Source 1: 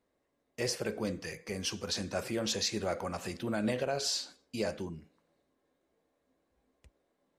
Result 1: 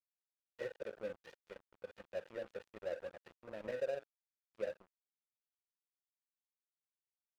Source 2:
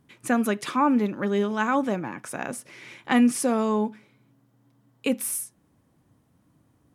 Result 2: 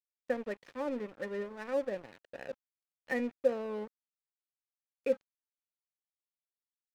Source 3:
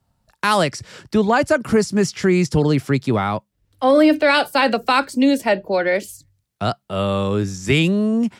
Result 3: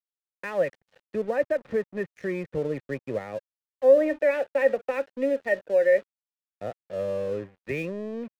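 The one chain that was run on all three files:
vocal tract filter e; crossover distortion -48 dBFS; gain +2 dB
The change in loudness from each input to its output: -10.5, -11.5, -8.0 LU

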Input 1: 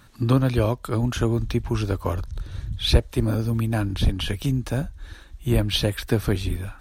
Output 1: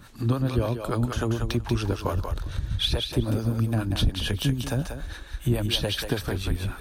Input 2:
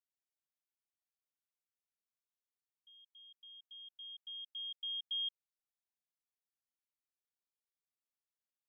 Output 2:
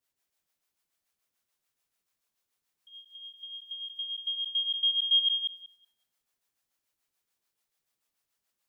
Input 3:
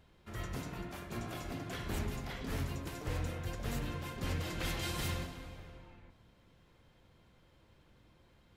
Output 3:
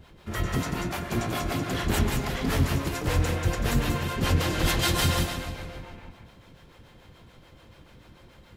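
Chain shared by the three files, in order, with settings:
dynamic EQ 2200 Hz, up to -4 dB, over -52 dBFS, Q 4.4; compressor 3:1, threshold -28 dBFS; harmonic tremolo 6.9 Hz, depth 70%, crossover 460 Hz; on a send: thinning echo 0.187 s, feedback 15%, high-pass 420 Hz, level -5 dB; on the sum: match loudness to -27 LUFS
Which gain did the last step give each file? +7.5, +15.0, +16.0 dB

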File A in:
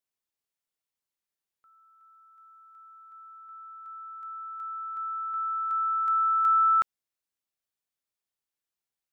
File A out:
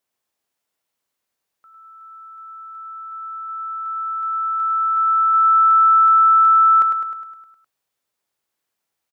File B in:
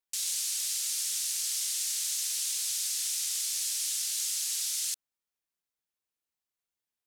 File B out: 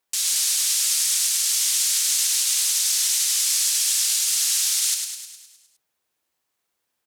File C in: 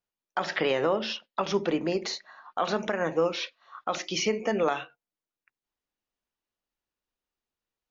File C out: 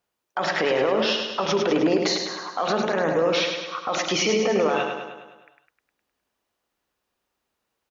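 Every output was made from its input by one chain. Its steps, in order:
HPF 47 Hz 12 dB/oct; bell 700 Hz +5 dB 2.8 oct; limiter -23 dBFS; feedback echo 0.103 s, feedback 57%, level -5.5 dB; normalise peaks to -9 dBFS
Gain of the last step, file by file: +8.0, +10.5, +8.5 dB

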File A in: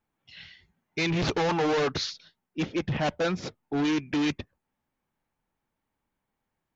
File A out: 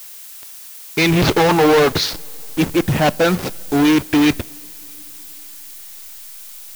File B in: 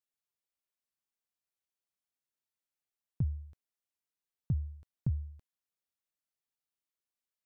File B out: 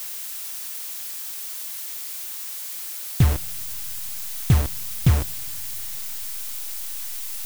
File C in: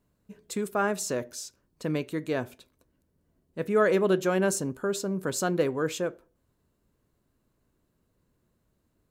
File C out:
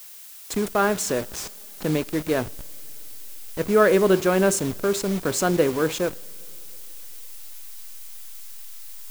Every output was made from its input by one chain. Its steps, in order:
level-crossing sampler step -35 dBFS; added noise blue -49 dBFS; two-slope reverb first 0.33 s, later 4 s, from -18 dB, DRR 19 dB; normalise peaks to -6 dBFS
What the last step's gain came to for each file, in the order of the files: +12.0, +16.0, +6.0 dB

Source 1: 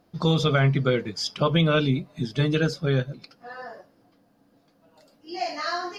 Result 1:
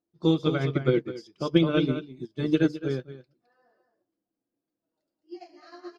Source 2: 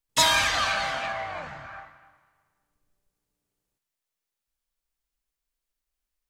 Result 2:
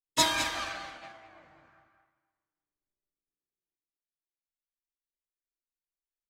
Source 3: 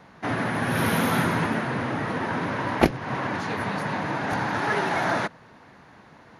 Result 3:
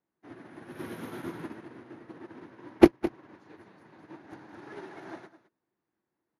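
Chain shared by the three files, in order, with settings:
bell 340 Hz +14.5 dB 0.54 oct; on a send: echo 0.212 s -6 dB; on the sum: upward expander 2.5:1, over -30 dBFS; gain -3 dB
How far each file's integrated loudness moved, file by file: -2.0, -5.0, -1.0 LU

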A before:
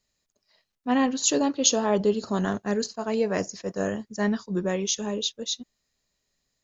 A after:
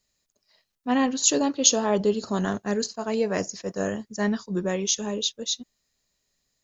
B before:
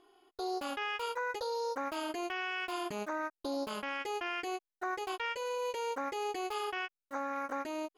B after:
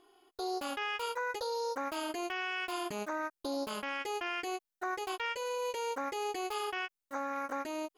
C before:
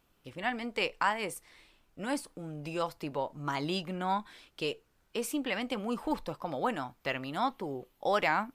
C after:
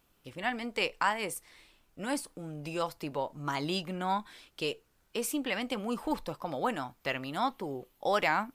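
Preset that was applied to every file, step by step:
high shelf 5500 Hz +5 dB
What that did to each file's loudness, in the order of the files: +1.0, +0.5, +0.5 LU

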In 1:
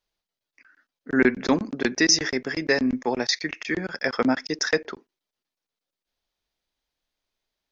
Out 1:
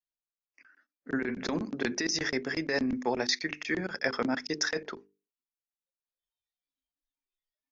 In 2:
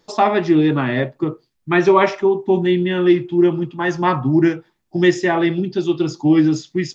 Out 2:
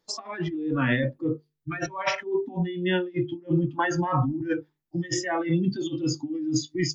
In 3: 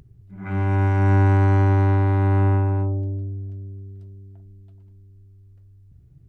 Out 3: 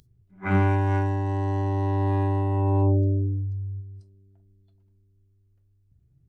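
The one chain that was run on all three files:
negative-ratio compressor -22 dBFS, ratio -1; notches 50/100/150/200/250/300/350/400/450 Hz; spectral noise reduction 18 dB; normalise peaks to -12 dBFS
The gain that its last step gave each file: -5.5, -2.0, +3.5 dB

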